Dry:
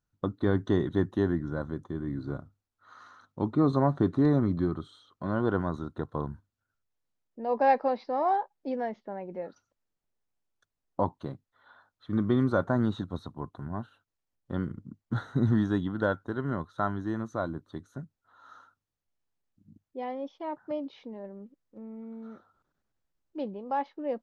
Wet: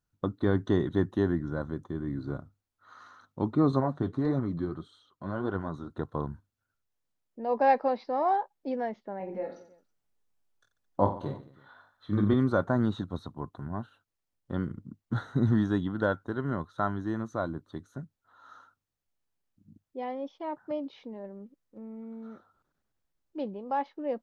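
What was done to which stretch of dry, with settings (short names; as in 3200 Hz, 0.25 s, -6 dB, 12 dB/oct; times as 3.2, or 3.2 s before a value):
3.8–5.9 flange 1.7 Hz, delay 0.4 ms, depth 9.5 ms, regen +52%
9.18–12.34 reverse bouncing-ball echo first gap 20 ms, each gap 1.4×, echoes 6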